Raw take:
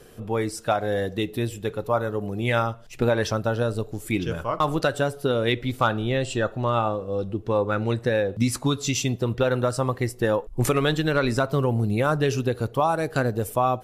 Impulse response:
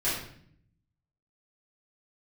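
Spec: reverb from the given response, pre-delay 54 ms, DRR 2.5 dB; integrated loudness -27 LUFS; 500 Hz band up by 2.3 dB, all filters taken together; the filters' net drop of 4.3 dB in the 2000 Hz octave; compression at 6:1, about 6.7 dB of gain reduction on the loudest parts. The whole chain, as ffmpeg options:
-filter_complex "[0:a]equalizer=f=500:t=o:g=3,equalizer=f=2k:t=o:g=-6.5,acompressor=threshold=-23dB:ratio=6,asplit=2[a][b];[1:a]atrim=start_sample=2205,adelay=54[c];[b][c]afir=irnorm=-1:irlink=0,volume=-12dB[d];[a][d]amix=inputs=2:normalize=0,volume=-1dB"

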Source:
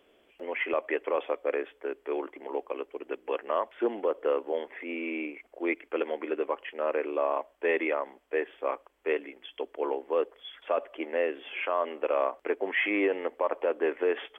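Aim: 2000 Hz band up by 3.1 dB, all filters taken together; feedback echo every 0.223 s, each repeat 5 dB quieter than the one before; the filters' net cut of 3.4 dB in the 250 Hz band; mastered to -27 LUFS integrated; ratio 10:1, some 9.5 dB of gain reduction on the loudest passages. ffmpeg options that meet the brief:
-af "equalizer=f=250:t=o:g=-5.5,equalizer=f=2k:t=o:g=3.5,acompressor=threshold=-32dB:ratio=10,aecho=1:1:223|446|669|892|1115|1338|1561:0.562|0.315|0.176|0.0988|0.0553|0.031|0.0173,volume=9.5dB"

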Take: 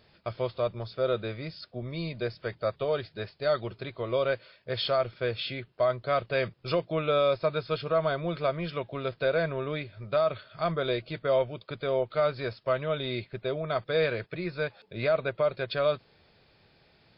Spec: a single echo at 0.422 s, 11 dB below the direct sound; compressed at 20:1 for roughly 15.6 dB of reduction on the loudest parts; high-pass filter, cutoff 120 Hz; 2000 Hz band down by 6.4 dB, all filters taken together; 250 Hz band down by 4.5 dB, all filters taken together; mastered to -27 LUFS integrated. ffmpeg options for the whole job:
-af "highpass=120,equalizer=f=250:t=o:g=-7,equalizer=f=2k:t=o:g=-9,acompressor=threshold=-38dB:ratio=20,aecho=1:1:422:0.282,volume=16.5dB"

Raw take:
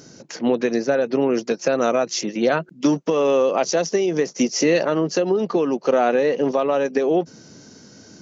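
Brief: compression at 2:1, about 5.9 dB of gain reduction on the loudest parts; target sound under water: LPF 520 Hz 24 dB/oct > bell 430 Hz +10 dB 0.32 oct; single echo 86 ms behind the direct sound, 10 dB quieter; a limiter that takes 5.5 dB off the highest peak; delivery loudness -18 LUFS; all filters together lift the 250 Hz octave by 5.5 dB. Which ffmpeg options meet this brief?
-af "equalizer=f=250:t=o:g=5.5,acompressor=threshold=-20dB:ratio=2,alimiter=limit=-13.5dB:level=0:latency=1,lowpass=f=520:w=0.5412,lowpass=f=520:w=1.3066,equalizer=f=430:t=o:w=0.32:g=10,aecho=1:1:86:0.316,volume=2.5dB"

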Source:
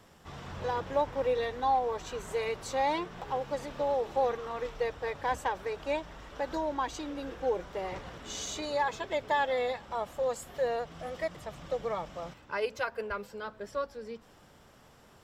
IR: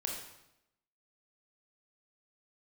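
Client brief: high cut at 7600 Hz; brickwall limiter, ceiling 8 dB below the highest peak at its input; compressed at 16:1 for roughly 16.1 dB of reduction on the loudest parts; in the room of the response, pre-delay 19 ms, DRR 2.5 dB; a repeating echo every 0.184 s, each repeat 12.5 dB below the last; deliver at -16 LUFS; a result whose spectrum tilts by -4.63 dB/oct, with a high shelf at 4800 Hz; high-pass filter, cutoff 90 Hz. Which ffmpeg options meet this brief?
-filter_complex "[0:a]highpass=90,lowpass=7.6k,highshelf=f=4.8k:g=-9,acompressor=threshold=-40dB:ratio=16,alimiter=level_in=13.5dB:limit=-24dB:level=0:latency=1,volume=-13.5dB,aecho=1:1:184|368|552:0.237|0.0569|0.0137,asplit=2[a][b];[1:a]atrim=start_sample=2205,adelay=19[c];[b][c]afir=irnorm=-1:irlink=0,volume=-4.5dB[d];[a][d]amix=inputs=2:normalize=0,volume=28.5dB"

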